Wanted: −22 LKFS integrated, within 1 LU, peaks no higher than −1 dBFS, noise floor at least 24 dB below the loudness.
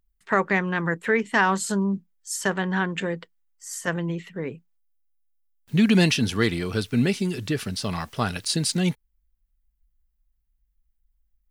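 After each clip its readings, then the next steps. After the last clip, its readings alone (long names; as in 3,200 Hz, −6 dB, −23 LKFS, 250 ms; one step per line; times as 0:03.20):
integrated loudness −24.5 LKFS; sample peak −7.5 dBFS; target loudness −22.0 LKFS
→ level +2.5 dB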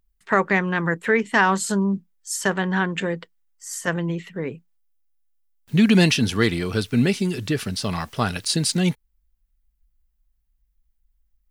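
integrated loudness −22.0 LKFS; sample peak −5.0 dBFS; background noise floor −70 dBFS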